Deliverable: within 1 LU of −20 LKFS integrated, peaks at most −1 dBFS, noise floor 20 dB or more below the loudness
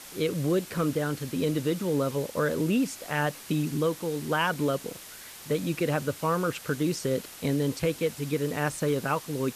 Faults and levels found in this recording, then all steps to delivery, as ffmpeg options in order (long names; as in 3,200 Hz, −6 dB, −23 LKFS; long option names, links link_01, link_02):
background noise floor −45 dBFS; target noise floor −49 dBFS; integrated loudness −28.5 LKFS; sample peak −12.0 dBFS; target loudness −20.0 LKFS
→ -af "afftdn=noise_reduction=6:noise_floor=-45"
-af "volume=8.5dB"